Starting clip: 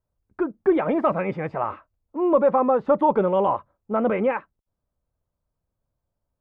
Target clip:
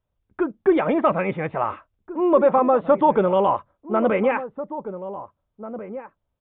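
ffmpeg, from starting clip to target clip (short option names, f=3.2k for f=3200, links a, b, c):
-filter_complex "[0:a]aresample=8000,aresample=44100,aemphasis=mode=production:type=75kf,asplit=2[a][b];[b]adelay=1691,volume=-12dB,highshelf=f=4k:g=-38[c];[a][c]amix=inputs=2:normalize=0,volume=1.5dB"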